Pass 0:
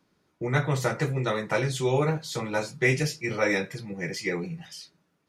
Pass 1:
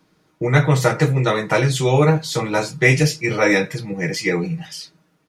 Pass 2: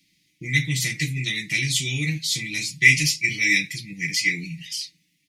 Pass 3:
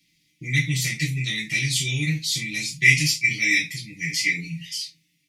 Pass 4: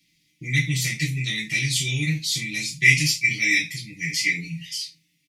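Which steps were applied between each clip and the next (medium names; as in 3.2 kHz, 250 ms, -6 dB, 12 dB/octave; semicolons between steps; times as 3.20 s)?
comb 6.4 ms, depth 38%; trim +8.5 dB
FFT filter 290 Hz 0 dB, 520 Hz -27 dB, 1.4 kHz -30 dB, 2 kHz +13 dB; trim -9.5 dB
gated-style reverb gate 80 ms falling, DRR 0.5 dB; trim -3 dB
delay 79 ms -23.5 dB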